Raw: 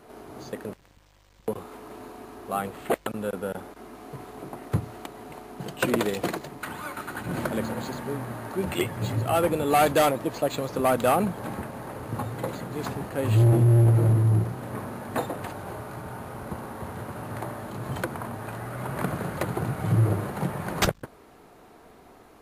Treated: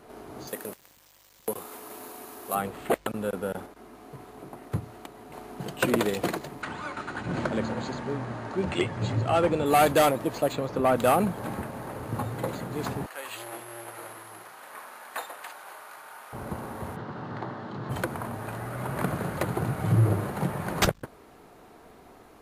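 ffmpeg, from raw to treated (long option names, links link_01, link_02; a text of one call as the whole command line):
ffmpeg -i in.wav -filter_complex "[0:a]asettb=1/sr,asplit=3[link_01][link_02][link_03];[link_01]atrim=end=0.474[link_04];[link_02]atrim=start=0.47:end=2.55,asetpts=PTS-STARTPTS,afade=type=in:duration=0.004:curve=qsin,afade=type=out:start_time=2.076:duration=0.004:curve=qsin,aemphasis=mode=production:type=bsi[link_05];[link_03]atrim=start=2.546[link_06];[link_04][link_05]acrossfade=duration=0.004:curve1=hsin:curve2=qsin[link_07];[link_07][link_06]acrossfade=duration=0.004:curve1=qsin:curve2=hsin,asettb=1/sr,asplit=3[link_08][link_09][link_10];[link_08]atrim=end=6.624[link_11];[link_09]atrim=start=6.62:end=9.66,asetpts=PTS-STARTPTS,afade=type=in:duration=0.004:curve=qsin,afade=type=out:start_time=3.036:duration=0.004:curve=qsin,lowpass=frequency=7100:width=0.5412,lowpass=frequency=7100:width=1.3066[link_12];[link_10]atrim=start=9.656[link_13];[link_11][link_12]acrossfade=duration=0.004:curve1=hsin:curve2=qsin[link_14];[link_14][link_13]acrossfade=duration=0.004:curve1=qsin:curve2=hsin,asettb=1/sr,asplit=3[link_15][link_16][link_17];[link_15]atrim=end=10.534[link_18];[link_16]atrim=start=10.53:end=10.96,asetpts=PTS-STARTPTS,afade=type=in:duration=0.004:curve=qsin,afade=type=out:start_time=0.426:duration=0.004:curve=qsin,lowpass=frequency=2900:poles=1[link_19];[link_17]atrim=start=10.956[link_20];[link_18][link_19]acrossfade=duration=0.004:curve1=hsin:curve2=qsin[link_21];[link_21][link_20]acrossfade=duration=0.004:curve1=qsin:curve2=hsin,asettb=1/sr,asplit=3[link_22][link_23][link_24];[link_22]atrim=end=13.064[link_25];[link_23]atrim=start=13.06:end=16.33,asetpts=PTS-STARTPTS,afade=type=in:duration=0.004:curve=qsin,afade=type=out:start_time=3.266:duration=0.004:curve=qsin,highpass=1100[link_26];[link_24]atrim=start=16.326[link_27];[link_25][link_26]acrossfade=duration=0.004:curve1=hsin:curve2=qsin[link_28];[link_28][link_27]acrossfade=duration=0.004:curve1=qsin:curve2=hsin,asplit=3[link_29][link_30][link_31];[link_29]afade=type=out:start_time=16.95:duration=0.02[link_32];[link_30]highpass=140,equalizer=frequency=150:width_type=q:width=4:gain=5,equalizer=frequency=610:width_type=q:width=4:gain=-5,equalizer=frequency=2400:width_type=q:width=4:gain=-7,lowpass=frequency=4900:width=0.5412,lowpass=frequency=4900:width=1.3066,afade=type=in:start_time=16.95:duration=0.02,afade=type=out:start_time=17.89:duration=0.02[link_33];[link_31]afade=type=in:start_time=17.89:duration=0.02[link_34];[link_32][link_33][link_34]amix=inputs=3:normalize=0,asplit=3[link_35][link_36][link_37];[link_35]atrim=end=3.662[link_38];[link_36]atrim=start=3.658:end=5.332,asetpts=PTS-STARTPTS,volume=-4.5dB[link_39];[link_37]atrim=start=5.328[link_40];[link_38][link_39]acrossfade=duration=0.004:curve1=hsin:curve2=hsin[link_41];[link_41][link_40]acrossfade=duration=0.004:curve1=hsin:curve2=hsin" out.wav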